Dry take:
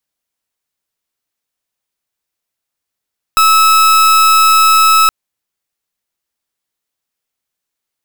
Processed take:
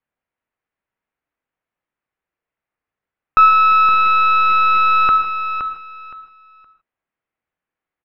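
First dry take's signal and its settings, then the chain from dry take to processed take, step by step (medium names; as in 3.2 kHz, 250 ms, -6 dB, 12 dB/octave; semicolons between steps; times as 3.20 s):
pulse 1.3 kHz, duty 41% -8 dBFS 1.72 s
low-pass 2.3 kHz 24 dB/octave; feedback delay 518 ms, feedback 22%, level -9 dB; gated-style reverb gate 180 ms flat, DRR 6 dB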